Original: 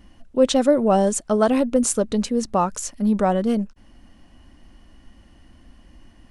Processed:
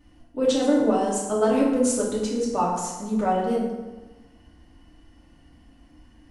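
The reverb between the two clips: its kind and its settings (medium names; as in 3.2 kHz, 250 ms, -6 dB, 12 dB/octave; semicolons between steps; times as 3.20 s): FDN reverb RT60 1.2 s, low-frequency decay 1×, high-frequency decay 0.65×, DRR -6.5 dB; trim -10 dB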